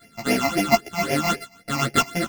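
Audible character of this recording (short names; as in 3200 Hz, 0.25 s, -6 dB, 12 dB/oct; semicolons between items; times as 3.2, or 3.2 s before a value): a buzz of ramps at a fixed pitch in blocks of 64 samples; phasing stages 8, 3.8 Hz, lowest notch 440–1200 Hz; tremolo triangle 7.2 Hz, depth 65%; a shimmering, thickened sound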